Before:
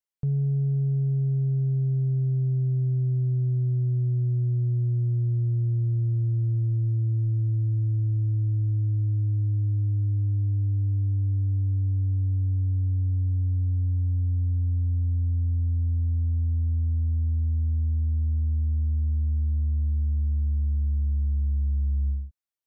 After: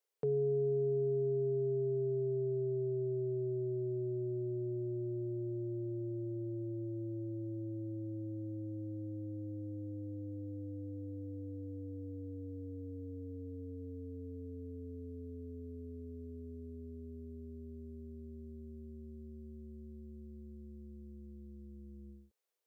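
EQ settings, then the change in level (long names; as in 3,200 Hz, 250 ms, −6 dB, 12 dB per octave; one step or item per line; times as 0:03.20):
high-pass with resonance 440 Hz, resonance Q 4.9
+2.5 dB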